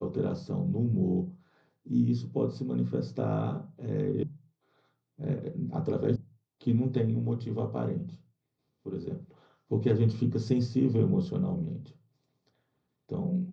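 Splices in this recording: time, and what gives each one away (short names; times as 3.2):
4.23 sound cut off
6.16 sound cut off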